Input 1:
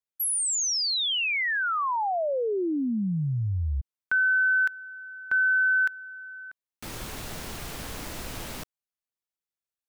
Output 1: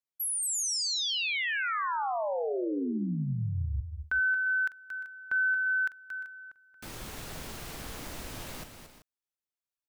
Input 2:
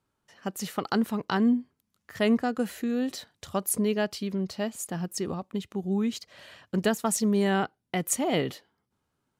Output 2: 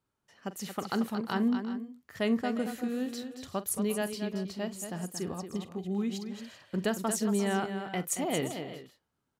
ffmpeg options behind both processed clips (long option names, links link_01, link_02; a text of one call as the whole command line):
ffmpeg -i in.wav -af "aecho=1:1:44|228|350|385:0.168|0.376|0.15|0.158,volume=-5dB" out.wav